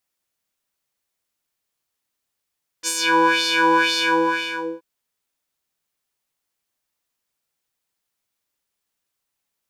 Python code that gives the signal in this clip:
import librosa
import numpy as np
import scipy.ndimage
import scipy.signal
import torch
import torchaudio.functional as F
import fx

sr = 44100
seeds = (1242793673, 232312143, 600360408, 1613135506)

y = fx.sub_patch_wobble(sr, seeds[0], note=64, wave='square', wave2='square', interval_st=7, level2_db=-6, sub_db=-13.5, noise_db=-20, kind='bandpass', cutoff_hz=950.0, q=2.4, env_oct=2.5, env_decay_s=0.27, env_sustain_pct=40, attack_ms=45.0, decay_s=0.07, sustain_db=-3, release_s=0.83, note_s=1.15, lfo_hz=2.0, wobble_oct=1.2)